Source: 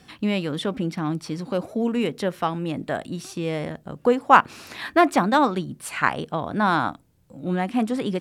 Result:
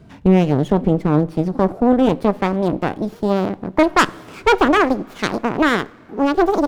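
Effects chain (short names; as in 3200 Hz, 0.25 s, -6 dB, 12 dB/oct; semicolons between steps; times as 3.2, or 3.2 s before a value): speed glide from 87% -> 159%; tilt shelf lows +8.5 dB, about 900 Hz; added harmonics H 8 -16 dB, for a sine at -1 dBFS; two-slope reverb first 0.53 s, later 3.5 s, from -16 dB, DRR 18.5 dB; running maximum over 5 samples; gain +2 dB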